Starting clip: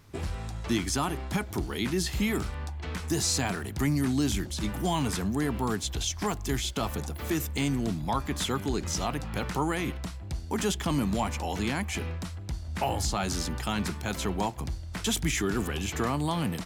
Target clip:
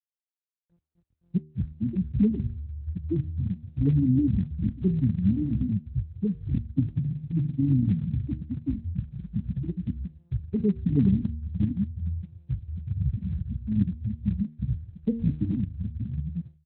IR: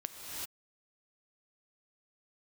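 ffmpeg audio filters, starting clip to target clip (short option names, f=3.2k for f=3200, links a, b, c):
-filter_complex "[0:a]highshelf=f=6.3k:t=q:w=1.5:g=-13.5,acrossover=split=280[a][b];[a]dynaudnorm=f=850:g=3:m=16dB[c];[c][b]amix=inputs=2:normalize=0,aeval=exprs='max(val(0),0)':c=same,aecho=1:1:517:0.158,aeval=exprs='0.422*(abs(mod(val(0)/0.422+3,4)-2)-1)':c=same,asettb=1/sr,asplit=3[d][e][f];[d]atrim=end=6.754[g];[e]atrim=start=6.75:end=7.6,asetpts=PTS-STARTPTS,afade=t=in:d=0.004:c=qsin,afade=t=out:st=0.846:d=0.004:c=qsin,aecho=1:1:7.4:0.92,atrim=end_sample=37485[h];[f]atrim=start=7.596[i];[g][h]acrossfade=d=0.004:c1=hsin:c2=qsin[j];[j][i]acrossfade=d=0.004:c1=qsin:c2=hsin,asettb=1/sr,asplit=3[k][l][m];[k]atrim=end=12.184[n];[l]atrim=start=12.18:end=12.82,asetpts=PTS-STARTPTS,afade=t=in:d=0.004:c=qsin,afade=t=out:st=0.636:d=0.004:c=qsin,equalizer=f=1k:w=0.45:g=-3[o];[m]atrim=start=12.816[p];[n][o]acrossfade=d=0.004:c1=hsin:c2=qsin[q];[q][p]acrossfade=d=0.004:c1=qsin:c2=hsin,afftfilt=real='re*gte(hypot(re,im),0.562)':imag='im*gte(hypot(re,im),0.562)':win_size=1024:overlap=0.75,bandreject=f=76.8:t=h:w=4,bandreject=f=153.6:t=h:w=4,bandreject=f=230.4:t=h:w=4,bandreject=f=307.2:t=h:w=4,bandreject=f=384:t=h:w=4,bandreject=f=460.8:t=h:w=4,bandreject=f=537.6:t=h:w=4,bandreject=f=614.4:t=h:w=4" -ar 32000 -c:a libspeex -b:a 24k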